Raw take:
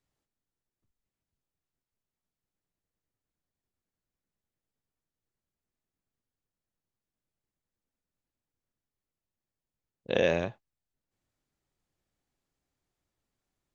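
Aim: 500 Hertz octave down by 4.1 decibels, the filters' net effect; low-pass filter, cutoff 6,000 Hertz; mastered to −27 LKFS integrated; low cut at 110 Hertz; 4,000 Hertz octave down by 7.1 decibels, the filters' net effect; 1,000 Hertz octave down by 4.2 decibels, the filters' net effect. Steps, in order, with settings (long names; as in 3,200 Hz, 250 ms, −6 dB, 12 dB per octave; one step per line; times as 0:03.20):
high-pass filter 110 Hz
low-pass filter 6,000 Hz
parametric band 500 Hz −3.5 dB
parametric band 1,000 Hz −4 dB
parametric band 4,000 Hz −8.5 dB
level +6 dB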